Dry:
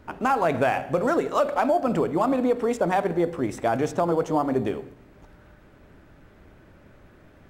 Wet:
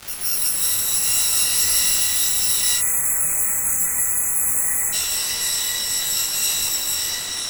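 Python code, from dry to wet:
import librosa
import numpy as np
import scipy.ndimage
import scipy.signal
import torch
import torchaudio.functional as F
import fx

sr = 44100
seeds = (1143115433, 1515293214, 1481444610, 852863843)

p1 = fx.bit_reversed(x, sr, seeds[0], block=128)
p2 = scipy.signal.sosfilt(scipy.signal.ellip(4, 1.0, 40, 1400.0, 'highpass', fs=sr, output='sos'), p1)
p3 = fx.peak_eq(p2, sr, hz=3200.0, db=-12.5, octaves=1.4)
p4 = fx.dmg_crackle(p3, sr, seeds[1], per_s=550.0, level_db=-34.0)
p5 = fx.fuzz(p4, sr, gain_db=46.0, gate_db=-47.0)
p6 = p4 + (p5 * 10.0 ** (-8.0 / 20.0))
p7 = fx.echo_pitch(p6, sr, ms=264, semitones=-6, count=3, db_per_echo=-3.0)
p8 = p7 + fx.echo_single(p7, sr, ms=163, db=-5.5, dry=0)
p9 = fx.spec_erase(p8, sr, start_s=2.79, length_s=2.14, low_hz=2600.0, high_hz=6100.0)
y = fx.detune_double(p9, sr, cents=21)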